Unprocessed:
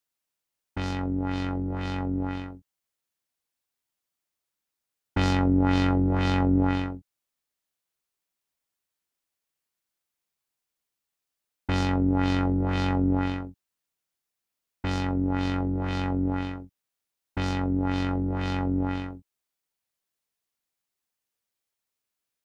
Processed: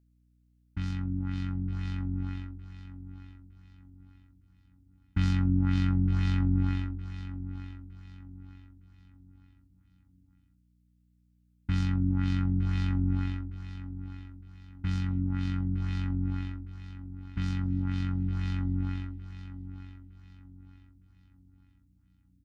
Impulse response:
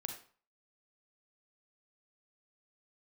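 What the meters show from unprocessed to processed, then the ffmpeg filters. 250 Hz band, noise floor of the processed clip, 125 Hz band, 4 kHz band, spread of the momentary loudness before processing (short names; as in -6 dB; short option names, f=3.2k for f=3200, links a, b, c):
-6.5 dB, -67 dBFS, 0.0 dB, -9.0 dB, 13 LU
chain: -filter_complex "[0:a]firequalizer=gain_entry='entry(200,0);entry(470,-29);entry(1300,-9)':delay=0.05:min_phase=1,aeval=exprs='val(0)+0.000562*(sin(2*PI*60*n/s)+sin(2*PI*2*60*n/s)/2+sin(2*PI*3*60*n/s)/3+sin(2*PI*4*60*n/s)/4+sin(2*PI*5*60*n/s)/5)':c=same,asplit=2[a][b];[b]aecho=0:1:911|1822|2733|3644:0.251|0.0879|0.0308|0.0108[c];[a][c]amix=inputs=2:normalize=0"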